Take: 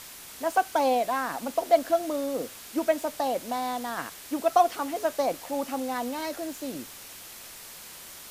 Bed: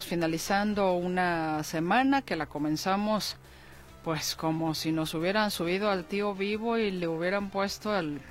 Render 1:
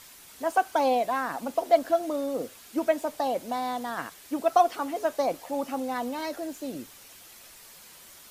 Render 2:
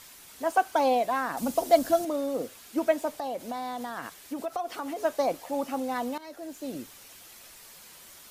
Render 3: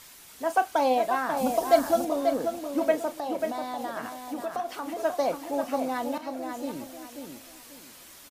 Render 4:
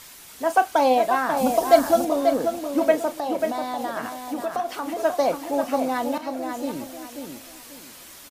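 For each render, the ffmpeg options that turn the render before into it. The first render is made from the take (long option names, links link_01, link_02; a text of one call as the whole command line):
ffmpeg -i in.wav -af "afftdn=noise_reduction=7:noise_floor=-45" out.wav
ffmpeg -i in.wav -filter_complex "[0:a]asettb=1/sr,asplit=3[link_01][link_02][link_03];[link_01]atrim=end=1.374[link_04];[link_02]atrim=start=1.37:end=2.05,asetpts=PTS-STARTPTS,afade=type=in:duration=0.004:curve=qsin,afade=type=out:start_time=0.676:duration=0.004:curve=qsin,bass=frequency=250:gain=12,treble=frequency=4000:gain=9[link_05];[link_03]atrim=start=2.046[link_06];[link_04][link_05]acrossfade=duration=0.004:curve1=hsin:curve2=qsin[link_07];[link_07][link_06]acrossfade=duration=0.004:curve1=qsin:curve2=hsin,asettb=1/sr,asplit=3[link_08][link_09][link_10];[link_08]atrim=end=3.194[link_11];[link_09]atrim=start=3.19:end=4.99,asetpts=PTS-STARTPTS,afade=type=in:duration=0.004:curve=qsin,afade=type=out:start_time=1.796:duration=0.004:curve=qsin,acompressor=threshold=-30dB:ratio=4:attack=3.2:release=140:knee=1:detection=peak[link_12];[link_10]atrim=start=4.986[link_13];[link_11][link_12]acrossfade=duration=0.004:curve1=hsin:curve2=qsin[link_14];[link_14][link_13]acrossfade=duration=0.004:curve1=qsin:curve2=hsin,asplit=2[link_15][link_16];[link_15]atrim=end=6.18,asetpts=PTS-STARTPTS,afade=type=out:start_time=6.176:duration=0.004:curve=hsin:silence=0.141254[link_17];[link_16]atrim=start=6.18,asetpts=PTS-STARTPTS,afade=type=in:duration=0.56:silence=0.141254[link_18];[link_17][link_18]concat=n=2:v=0:a=1" out.wav
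ffmpeg -i in.wav -filter_complex "[0:a]asplit=2[link_01][link_02];[link_02]adelay=35,volume=-13dB[link_03];[link_01][link_03]amix=inputs=2:normalize=0,asplit=2[link_04][link_05];[link_05]adelay=539,lowpass=frequency=3900:poles=1,volume=-6dB,asplit=2[link_06][link_07];[link_07]adelay=539,lowpass=frequency=3900:poles=1,volume=0.29,asplit=2[link_08][link_09];[link_09]adelay=539,lowpass=frequency=3900:poles=1,volume=0.29,asplit=2[link_10][link_11];[link_11]adelay=539,lowpass=frequency=3900:poles=1,volume=0.29[link_12];[link_04][link_06][link_08][link_10][link_12]amix=inputs=5:normalize=0" out.wav
ffmpeg -i in.wav -af "volume=5dB" out.wav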